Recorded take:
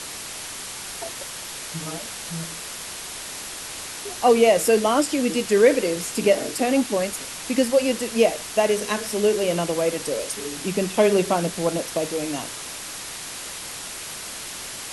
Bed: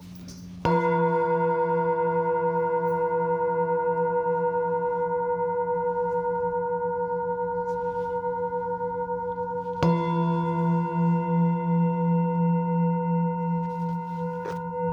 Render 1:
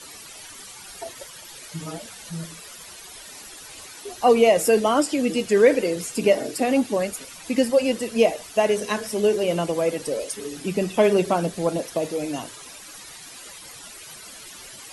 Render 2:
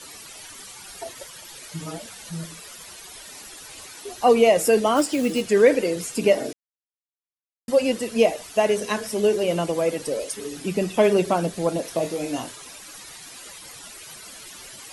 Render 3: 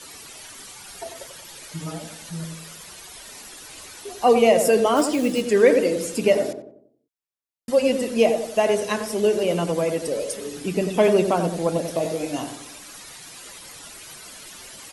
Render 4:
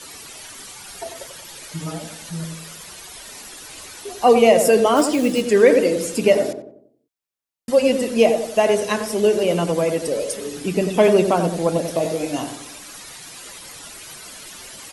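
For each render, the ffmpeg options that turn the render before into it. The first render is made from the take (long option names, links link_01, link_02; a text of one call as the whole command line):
ffmpeg -i in.wav -af "afftdn=noise_reduction=13:noise_floor=-35" out.wav
ffmpeg -i in.wav -filter_complex "[0:a]asplit=3[link_01][link_02][link_03];[link_01]afade=type=out:start_time=4.95:duration=0.02[link_04];[link_02]acrusher=bits=5:mode=log:mix=0:aa=0.000001,afade=type=in:start_time=4.95:duration=0.02,afade=type=out:start_time=5.41:duration=0.02[link_05];[link_03]afade=type=in:start_time=5.41:duration=0.02[link_06];[link_04][link_05][link_06]amix=inputs=3:normalize=0,asettb=1/sr,asplit=3[link_07][link_08][link_09];[link_07]atrim=end=11.824[link_10];[link_08]atrim=start=11.82:end=12.52,asetpts=PTS-STARTPTS,afade=type=in:duration=0.004:curve=qsin,afade=type=out:start_time=0.696:duration=0.004:curve=qsin,asplit=2[link_11][link_12];[link_12]adelay=24,volume=-6dB[link_13];[link_11][link_13]amix=inputs=2:normalize=0,atrim=end_sample=30870[link_14];[link_09]atrim=start=12.516[link_15];[link_10][link_14]acrossfade=duration=0.004:curve1=hsin:curve2=qsin[link_16];[link_16][link_15]acrossfade=duration=0.004:curve1=qsin:curve2=hsin,asplit=3[link_17][link_18][link_19];[link_17]atrim=end=6.53,asetpts=PTS-STARTPTS,afade=type=out:start_time=6.526:duration=0.004:curve=hsin[link_20];[link_18]atrim=start=6.53:end=7.68,asetpts=PTS-STARTPTS,volume=0[link_21];[link_19]atrim=start=7.68,asetpts=PTS-STARTPTS,afade=type=in:duration=0.004:curve=hsin[link_22];[link_20][link_21][link_22]concat=n=3:v=0:a=1" out.wav
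ffmpeg -i in.wav -filter_complex "[0:a]asplit=2[link_01][link_02];[link_02]adelay=92,lowpass=frequency=950:poles=1,volume=-6dB,asplit=2[link_03][link_04];[link_04]adelay=92,lowpass=frequency=950:poles=1,volume=0.48,asplit=2[link_05][link_06];[link_06]adelay=92,lowpass=frequency=950:poles=1,volume=0.48,asplit=2[link_07][link_08];[link_08]adelay=92,lowpass=frequency=950:poles=1,volume=0.48,asplit=2[link_09][link_10];[link_10]adelay=92,lowpass=frequency=950:poles=1,volume=0.48,asplit=2[link_11][link_12];[link_12]adelay=92,lowpass=frequency=950:poles=1,volume=0.48[link_13];[link_01][link_03][link_05][link_07][link_09][link_11][link_13]amix=inputs=7:normalize=0" out.wav
ffmpeg -i in.wav -af "volume=3dB,alimiter=limit=-2dB:level=0:latency=1" out.wav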